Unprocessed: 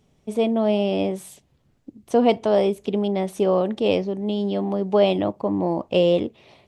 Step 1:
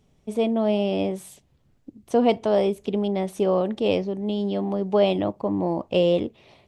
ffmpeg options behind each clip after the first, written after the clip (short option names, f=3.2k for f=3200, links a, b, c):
-af "lowshelf=f=67:g=6.5,volume=-2dB"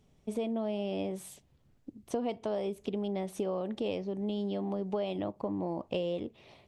-af "acompressor=threshold=-27dB:ratio=6,volume=-3.5dB"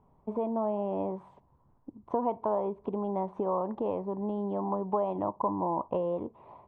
-af "lowpass=f=990:t=q:w=8.4"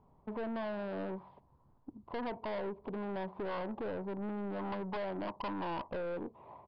-af "aeval=exprs='(tanh(50.1*val(0)+0.2)-tanh(0.2))/50.1':c=same,aresample=11025,aresample=44100,volume=-1dB"